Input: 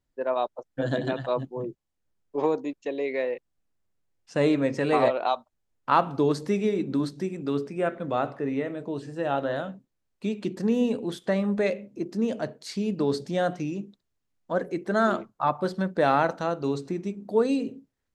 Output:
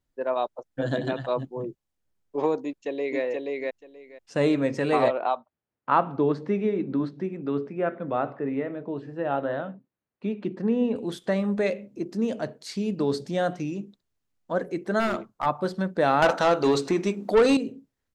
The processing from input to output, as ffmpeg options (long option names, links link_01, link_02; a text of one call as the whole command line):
ffmpeg -i in.wav -filter_complex "[0:a]asplit=2[link_01][link_02];[link_02]afade=type=in:start_time=2.62:duration=0.01,afade=type=out:start_time=3.22:duration=0.01,aecho=0:1:480|960|1440:0.794328|0.119149|0.0178724[link_03];[link_01][link_03]amix=inputs=2:normalize=0,asettb=1/sr,asplit=3[link_04][link_05][link_06];[link_04]atrim=end=5.114[link_07];[link_05]atrim=start=5.11:end=10.96,asetpts=PTS-STARTPTS,afade=type=in:duration=0.004:curve=qsin,afade=type=out:start_time=5.846:duration=0.004:curve=qsin,highpass=110,lowpass=2300[link_08];[link_06]atrim=start=10.956[link_09];[link_07][link_08]acrossfade=duration=0.004:curve1=hsin:curve2=qsin[link_10];[link_10][link_09]acrossfade=duration=0.004:curve1=qsin:curve2=hsin,asplit=3[link_11][link_12][link_13];[link_11]afade=type=out:start_time=14.99:duration=0.02[link_14];[link_12]aeval=exprs='clip(val(0),-1,0.0708)':channel_layout=same,afade=type=in:start_time=14.99:duration=0.02,afade=type=out:start_time=15.45:duration=0.02[link_15];[link_13]afade=type=in:start_time=15.45:duration=0.02[link_16];[link_14][link_15][link_16]amix=inputs=3:normalize=0,asettb=1/sr,asplit=3[link_17][link_18][link_19];[link_17]atrim=end=16.224[link_20];[link_18]atrim=start=16.22:end=17.57,asetpts=PTS-STARTPTS,afade=type=in:duration=0.004:curve=qsin,afade=type=out:start_time=1.346:duration=0.004:curve=qsin,asplit=2[link_21][link_22];[link_22]highpass=frequency=720:poles=1,volume=21dB,asoftclip=type=tanh:threshold=-10dB[link_23];[link_21][link_23]amix=inputs=2:normalize=0,lowpass=frequency=7100:poles=1,volume=-6dB[link_24];[link_19]atrim=start=17.566[link_25];[link_20][link_24]acrossfade=duration=0.004:curve1=hsin:curve2=qsin[link_26];[link_26][link_25]acrossfade=duration=0.004:curve1=qsin:curve2=hsin" out.wav